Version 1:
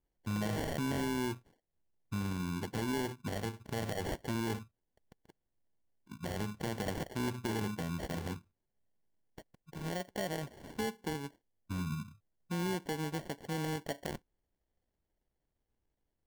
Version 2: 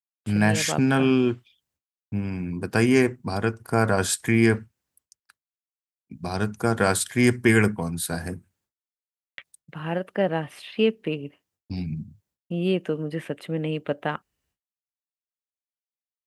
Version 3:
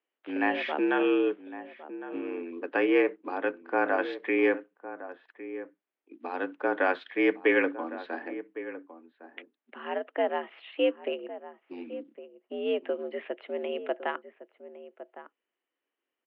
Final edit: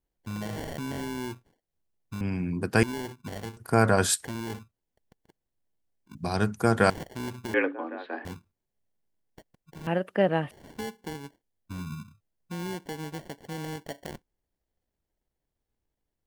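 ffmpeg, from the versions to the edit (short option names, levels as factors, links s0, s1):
-filter_complex "[1:a]asplit=4[s0][s1][s2][s3];[0:a]asplit=6[s4][s5][s6][s7][s8][s9];[s4]atrim=end=2.212[s10];[s0]atrim=start=2.208:end=2.832[s11];[s5]atrim=start=2.828:end=3.572[s12];[s1]atrim=start=3.568:end=4.252[s13];[s6]atrim=start=4.248:end=6.152[s14];[s2]atrim=start=6.148:end=6.902[s15];[s7]atrim=start=6.898:end=7.542[s16];[2:a]atrim=start=7.538:end=8.252[s17];[s8]atrim=start=8.248:end=9.872[s18];[s3]atrim=start=9.868:end=10.512[s19];[s9]atrim=start=10.508[s20];[s10][s11]acrossfade=d=0.004:c1=hsin:c2=hsin[s21];[s21][s12]acrossfade=d=0.004:c1=hsin:c2=hsin[s22];[s22][s13]acrossfade=d=0.004:c1=hsin:c2=hsin[s23];[s23][s14]acrossfade=d=0.004:c1=hsin:c2=hsin[s24];[s24][s15]acrossfade=d=0.004:c1=hsin:c2=hsin[s25];[s25][s16]acrossfade=d=0.004:c1=hsin:c2=hsin[s26];[s26][s17]acrossfade=d=0.004:c1=hsin:c2=hsin[s27];[s27][s18]acrossfade=d=0.004:c1=hsin:c2=hsin[s28];[s28][s19]acrossfade=d=0.004:c1=hsin:c2=hsin[s29];[s29][s20]acrossfade=d=0.004:c1=hsin:c2=hsin"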